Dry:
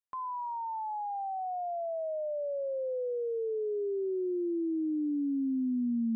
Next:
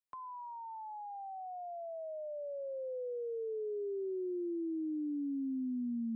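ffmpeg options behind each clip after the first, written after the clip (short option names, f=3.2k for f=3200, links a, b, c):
-filter_complex "[0:a]acrossover=split=220|460[a][b][c];[a]acompressor=threshold=-39dB:ratio=4[d];[b]acompressor=threshold=-36dB:ratio=4[e];[c]acompressor=threshold=-42dB:ratio=4[f];[d][e][f]amix=inputs=3:normalize=0,volume=-4dB"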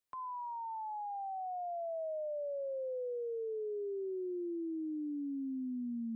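-af "alimiter=level_in=15.5dB:limit=-24dB:level=0:latency=1,volume=-15.5dB,volume=4dB"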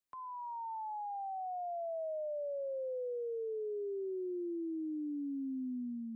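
-af "dynaudnorm=f=120:g=7:m=3.5dB,volume=-3.5dB"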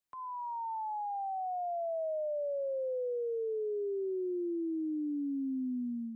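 -af "dynaudnorm=f=110:g=3:m=4dB"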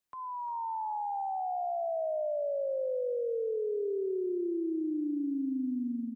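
-af "aecho=1:1:351|702|1053:0.316|0.0822|0.0214,volume=2dB"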